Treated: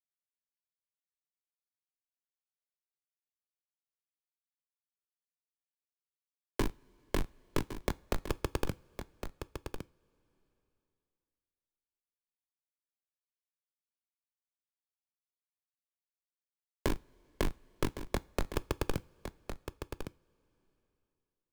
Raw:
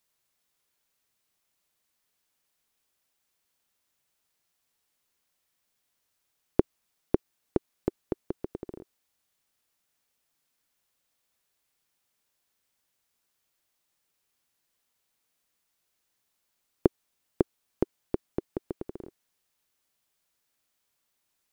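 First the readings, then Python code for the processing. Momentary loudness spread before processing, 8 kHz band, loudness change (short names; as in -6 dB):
14 LU, n/a, -5.5 dB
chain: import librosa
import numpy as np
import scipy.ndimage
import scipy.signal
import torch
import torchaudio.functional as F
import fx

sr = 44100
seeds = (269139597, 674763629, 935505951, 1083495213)

y = fx.tracing_dist(x, sr, depth_ms=0.08)
y = scipy.signal.sosfilt(scipy.signal.cheby1(3, 1.0, [260.0, 760.0], 'bandpass', fs=sr, output='sos'), y)
y = fx.low_shelf(y, sr, hz=380.0, db=4.0)
y = fx.hum_notches(y, sr, base_hz=50, count=8)
y = fx.schmitt(y, sr, flips_db=-29.0)
y = fx.quant_companded(y, sr, bits=4)
y = y + 10.0 ** (-12.5 / 20.0) * np.pad(y, (int(1110 * sr / 1000.0), 0))[:len(y)]
y = fx.rev_double_slope(y, sr, seeds[0], early_s=0.29, late_s=2.7, knee_db=-21, drr_db=18.0)
y = fx.band_squash(y, sr, depth_pct=40)
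y = y * librosa.db_to_amplitude(13.5)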